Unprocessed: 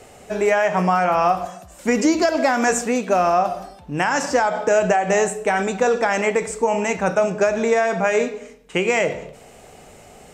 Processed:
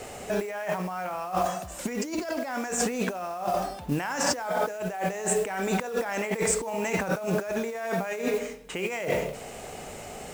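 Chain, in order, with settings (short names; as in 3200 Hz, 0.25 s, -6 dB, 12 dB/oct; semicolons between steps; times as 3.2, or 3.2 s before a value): low shelf 250 Hz -2.5 dB; negative-ratio compressor -28 dBFS, ratio -1; modulation noise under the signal 21 dB; gain -2 dB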